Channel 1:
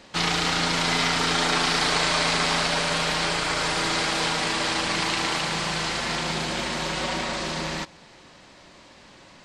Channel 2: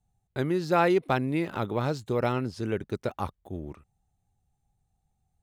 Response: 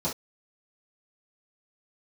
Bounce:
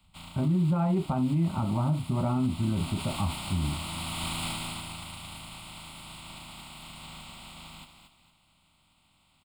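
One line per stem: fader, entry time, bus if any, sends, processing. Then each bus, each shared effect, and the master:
0:02.28 −15 dB → 0:02.84 −2.5 dB → 0:04.25 −2.5 dB → 0:04.98 −15 dB, 0.00 s, send −20.5 dB, echo send −8 dB, ceiling on every frequency bin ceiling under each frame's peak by 27 dB; noise that follows the level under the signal 17 dB; automatic ducking −16 dB, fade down 0.75 s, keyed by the second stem
0.0 dB, 0.00 s, send −12.5 dB, no echo send, low-pass filter 1,400 Hz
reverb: on, pre-delay 3 ms
echo: repeating echo 232 ms, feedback 32%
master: low-shelf EQ 430 Hz +8 dB; phaser with its sweep stopped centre 1,700 Hz, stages 6; brickwall limiter −19.5 dBFS, peak gain reduction 9 dB

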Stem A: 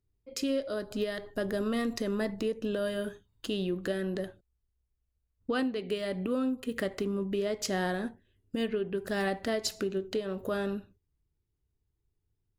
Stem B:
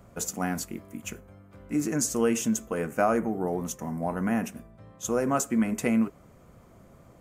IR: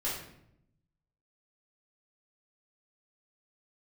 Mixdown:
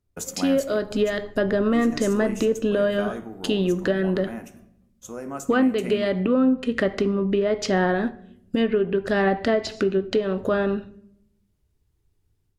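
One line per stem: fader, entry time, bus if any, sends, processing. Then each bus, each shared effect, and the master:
+2.5 dB, 0.00 s, send −19.5 dB, automatic gain control gain up to 7 dB; treble cut that deepens with the level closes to 530 Hz, closed at −15 dBFS
0.0 dB, 0.00 s, send −23 dB, noise gate −45 dBFS, range −36 dB; automatic ducking −10 dB, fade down 1.75 s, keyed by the first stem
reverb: on, RT60 0.75 s, pre-delay 3 ms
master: no processing

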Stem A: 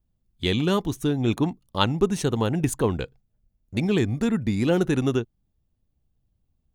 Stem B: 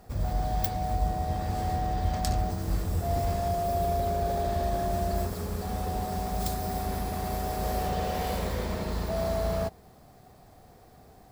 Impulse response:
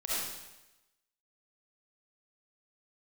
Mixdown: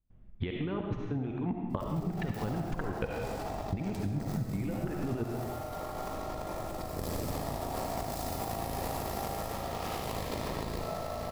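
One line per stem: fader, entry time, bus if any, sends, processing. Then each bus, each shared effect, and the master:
+2.5 dB, 0.00 s, send −4.5 dB, low-pass filter 2,400 Hz 24 dB per octave; compressor whose output falls as the input rises −33 dBFS, ratio −1; gate pattern ".xx.x.xx.x.xx" 149 BPM −24 dB
−11.0 dB, 1.70 s, send −4 dB, harmonic generator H 8 −7 dB, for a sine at −9 dBFS; notch filter 1,500 Hz, Q 6.2; compressor whose output falls as the input rises −30 dBFS, ratio −1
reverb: on, RT60 1.0 s, pre-delay 25 ms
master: downward compressor 6 to 1, threshold −30 dBFS, peak gain reduction 11 dB

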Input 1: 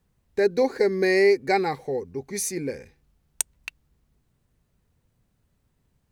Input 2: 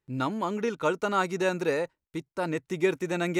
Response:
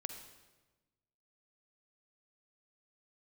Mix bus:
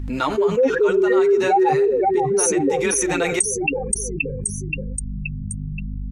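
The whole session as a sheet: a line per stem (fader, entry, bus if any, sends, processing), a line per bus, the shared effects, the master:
+2.5 dB, 0.00 s, no send, echo send −6.5 dB, expanding power law on the bin magnitudes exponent 3.3; parametric band 1,600 Hz +6 dB 2.3 octaves; mains hum 50 Hz, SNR 32 dB
−6.0 dB, 0.00 s, send −6.5 dB, no echo send, meter weighting curve A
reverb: on, RT60 1.2 s, pre-delay 42 ms
echo: repeating echo 526 ms, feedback 30%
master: flanger 1 Hz, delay 2.7 ms, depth 7 ms, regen +20%; envelope flattener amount 70%

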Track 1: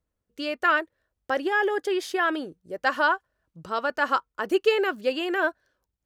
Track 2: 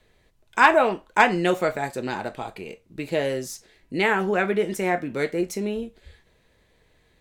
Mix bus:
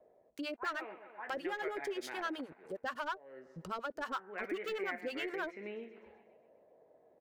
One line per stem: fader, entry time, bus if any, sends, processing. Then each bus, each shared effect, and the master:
−5.0 dB, 0.00 s, no send, no echo send, de-essing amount 80%; leveller curve on the samples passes 2; two-band tremolo in antiphase 9.5 Hz, depth 100%, crossover 630 Hz
−3.0 dB, 0.00 s, no send, echo send −23 dB, high-pass filter 300 Hz 12 dB per octave; volume swells 563 ms; envelope-controlled low-pass 630–2,100 Hz up, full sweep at −29.5 dBFS; automatic ducking −9 dB, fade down 0.75 s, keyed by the first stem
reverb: not used
echo: repeating echo 127 ms, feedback 56%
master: downward compressor 2 to 1, threshold −44 dBFS, peak gain reduction 13 dB

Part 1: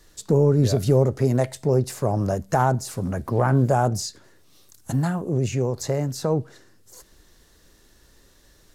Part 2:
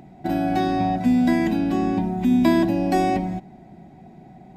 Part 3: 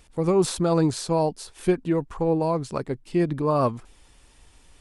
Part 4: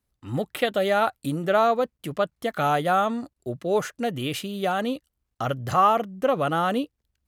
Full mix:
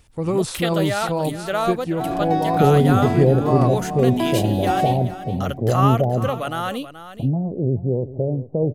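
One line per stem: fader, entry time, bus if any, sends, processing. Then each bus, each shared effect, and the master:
+2.0 dB, 2.30 s, no send, echo send −15.5 dB, Butterworth low-pass 660 Hz 36 dB per octave
−6.0 dB, 1.75 s, no send, echo send −13.5 dB, parametric band 750 Hz +8.5 dB
−1.5 dB, 0.00 s, no send, echo send −12.5 dB, parametric band 95 Hz +11.5 dB 0.77 octaves
−3.5 dB, 0.00 s, no send, echo send −13 dB, high-shelf EQ 2,400 Hz +9 dB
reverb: not used
echo: single-tap delay 428 ms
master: no processing

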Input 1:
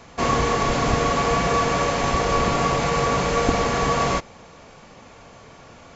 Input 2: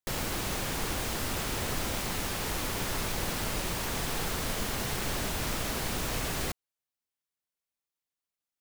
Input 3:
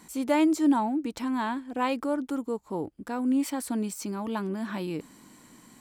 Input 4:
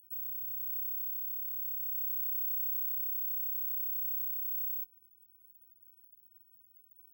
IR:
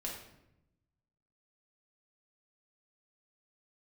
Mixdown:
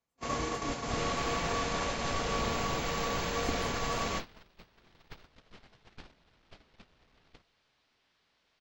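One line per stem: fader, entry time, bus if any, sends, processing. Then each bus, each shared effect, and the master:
−14.5 dB, 0.00 s, send −17 dB, high-shelf EQ 3,200 Hz +6.5 dB
−3.5 dB, 0.90 s, send −10.5 dB, sign of each sample alone; low-pass filter 4,600 Hz 24 dB per octave
−13.0 dB, 0.00 s, no send, high-pass filter 400 Hz 12 dB per octave; parametric band 7,600 Hz −4.5 dB 2.6 octaves; rotating-speaker cabinet horn 0.6 Hz
−17.5 dB, 0.50 s, no send, adaptive Wiener filter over 25 samples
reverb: on, RT60 0.85 s, pre-delay 5 ms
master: noise gate −33 dBFS, range −30 dB

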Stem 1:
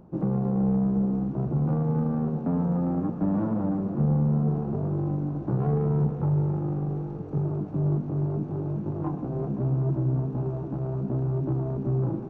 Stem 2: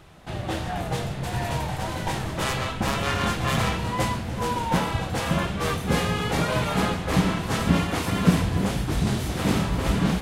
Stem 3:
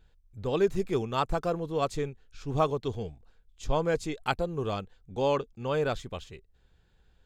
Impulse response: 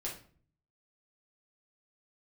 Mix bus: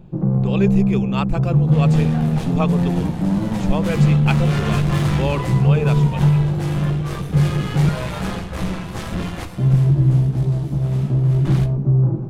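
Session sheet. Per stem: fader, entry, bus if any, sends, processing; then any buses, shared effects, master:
−1.0 dB, 0.00 s, muted 0:07.89–0:09.58, send −8.5 dB, parametric band 140 Hz +8.5 dB 0.45 octaves
−0.5 dB, 1.45 s, send −5 dB, sample-and-hold tremolo 1 Hz, depth 80%; tube saturation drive 24 dB, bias 0.7
+1.5 dB, 0.00 s, no send, parametric band 2,500 Hz +11 dB 0.43 octaves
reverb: on, RT60 0.45 s, pre-delay 5 ms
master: low-shelf EQ 110 Hz +8.5 dB

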